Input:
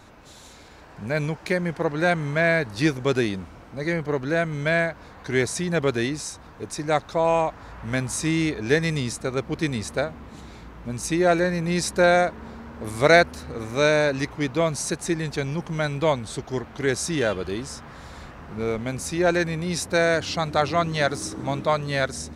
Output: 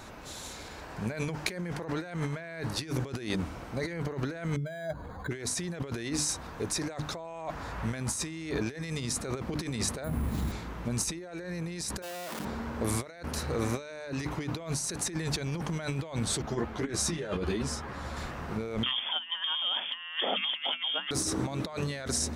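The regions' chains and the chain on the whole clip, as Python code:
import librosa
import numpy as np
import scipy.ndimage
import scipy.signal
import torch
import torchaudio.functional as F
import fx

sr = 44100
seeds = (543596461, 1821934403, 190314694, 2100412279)

y = fx.chain(x, sr, fx.spec_expand(power=1.8),
    fx.resample_linear(factor=8), at=(4.56, 5.31))
y = fx.chain(y, sr, fx.bass_treble(bass_db=11, treble_db=-2),
    fx.resample_bad(factor=4, down='none', up='hold'), at=(10.04, 10.52))
y = fx.chain(y, sr, fx.clip_1bit(),
    fx.bessel_highpass(hz=270.0, order=2),
    fx.level_steps(step_db=22), at=(12.02, 12.45))
y = fx.chain(y, sr, fx.high_shelf(hz=2900.0, db=-7.5),
    fx.over_compress(threshold_db=-28.0, ratio=-0.5),
    fx.ensemble(), at=(16.42, 18.17))
y = fx.chain(y, sr, fx.freq_invert(carrier_hz=3400),
    fx.over_compress(threshold_db=-28.0, ratio=-0.5),
    fx.cheby_ripple_highpass(hz=180.0, ripple_db=6), at=(18.83, 21.11))
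y = fx.high_shelf(y, sr, hz=6300.0, db=4.5)
y = fx.hum_notches(y, sr, base_hz=50, count=6)
y = fx.over_compress(y, sr, threshold_db=-32.0, ratio=-1.0)
y = F.gain(torch.from_numpy(y), -2.5).numpy()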